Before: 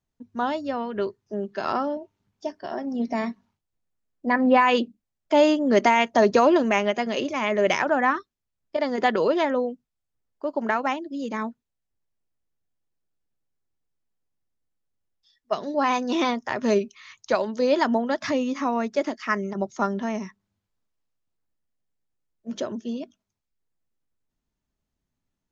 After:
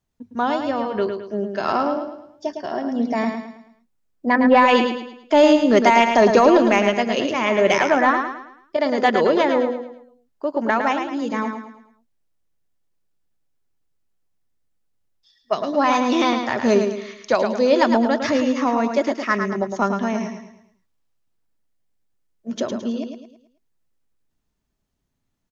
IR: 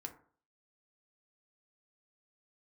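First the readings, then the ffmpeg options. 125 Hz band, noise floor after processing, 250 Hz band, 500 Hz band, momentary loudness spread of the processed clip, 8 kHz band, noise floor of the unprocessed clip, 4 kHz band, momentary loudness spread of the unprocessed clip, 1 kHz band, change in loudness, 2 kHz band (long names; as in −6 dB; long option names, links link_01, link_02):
+5.0 dB, −73 dBFS, +5.0 dB, +5.0 dB, 16 LU, can't be measured, −83 dBFS, +5.0 dB, 15 LU, +5.0 dB, +5.0 dB, +4.5 dB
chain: -af "acontrast=34,aecho=1:1:108|216|324|432|540:0.473|0.189|0.0757|0.0303|0.0121,volume=-1dB"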